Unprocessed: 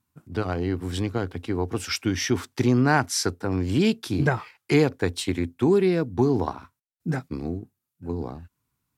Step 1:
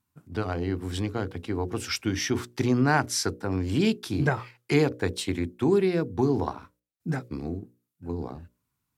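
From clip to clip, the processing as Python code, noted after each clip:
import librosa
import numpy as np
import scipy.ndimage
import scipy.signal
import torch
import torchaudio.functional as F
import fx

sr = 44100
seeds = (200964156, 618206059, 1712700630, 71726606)

y = fx.hum_notches(x, sr, base_hz=60, count=10)
y = F.gain(torch.from_numpy(y), -2.0).numpy()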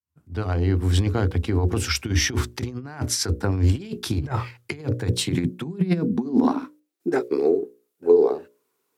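y = fx.fade_in_head(x, sr, length_s=1.0)
y = fx.over_compress(y, sr, threshold_db=-29.0, ratio=-0.5)
y = fx.filter_sweep_highpass(y, sr, from_hz=71.0, to_hz=420.0, start_s=4.23, end_s=7.38, q=7.6)
y = F.gain(torch.from_numpy(y), 3.5).numpy()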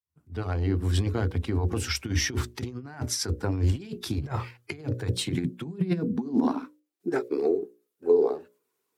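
y = fx.spec_quant(x, sr, step_db=15)
y = F.gain(torch.from_numpy(y), -4.5).numpy()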